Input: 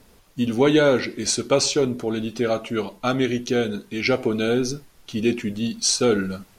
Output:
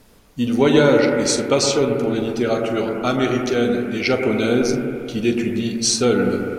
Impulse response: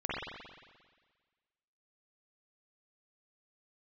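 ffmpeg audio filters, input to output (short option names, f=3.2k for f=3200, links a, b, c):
-filter_complex "[0:a]asplit=2[a][b];[1:a]atrim=start_sample=2205,asetrate=29547,aresample=44100,adelay=42[c];[b][c]afir=irnorm=-1:irlink=0,volume=-11.5dB[d];[a][d]amix=inputs=2:normalize=0,volume=1.5dB"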